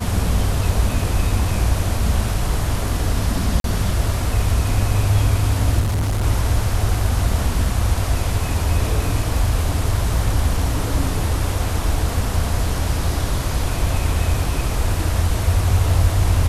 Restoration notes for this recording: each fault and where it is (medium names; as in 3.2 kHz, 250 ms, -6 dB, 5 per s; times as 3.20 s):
3.60–3.64 s: dropout 42 ms
5.80–6.25 s: clipped -16.5 dBFS